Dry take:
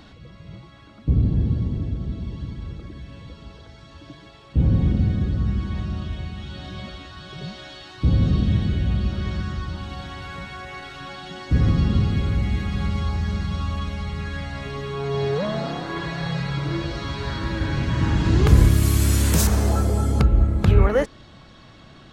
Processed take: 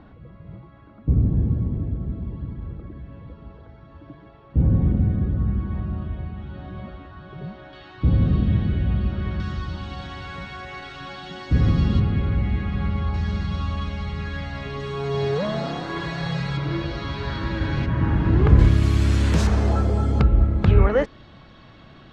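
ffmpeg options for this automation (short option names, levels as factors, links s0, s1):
-af "asetnsamples=n=441:p=0,asendcmd='7.73 lowpass f 2400;9.4 lowpass f 5800;12 lowpass f 2500;13.14 lowpass f 5000;14.8 lowpass f 8300;16.57 lowpass f 4300;17.86 lowpass f 1900;18.59 lowpass f 3700',lowpass=1400"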